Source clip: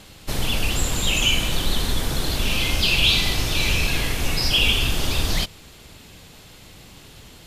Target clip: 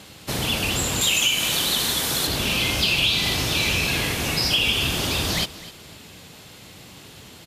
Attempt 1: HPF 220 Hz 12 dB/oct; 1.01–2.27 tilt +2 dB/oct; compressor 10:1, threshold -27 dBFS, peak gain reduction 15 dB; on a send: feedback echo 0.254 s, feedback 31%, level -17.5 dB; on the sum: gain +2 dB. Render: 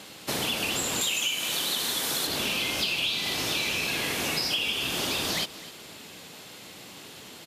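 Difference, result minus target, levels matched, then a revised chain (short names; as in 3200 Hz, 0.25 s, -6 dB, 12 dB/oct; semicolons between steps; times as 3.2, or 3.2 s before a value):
compressor: peak gain reduction +7.5 dB; 125 Hz band -7.5 dB
HPF 93 Hz 12 dB/oct; 1.01–2.27 tilt +2 dB/oct; compressor 10:1, threshold -18.5 dBFS, peak gain reduction 7 dB; on a send: feedback echo 0.254 s, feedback 31%, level -17.5 dB; on the sum: gain +2 dB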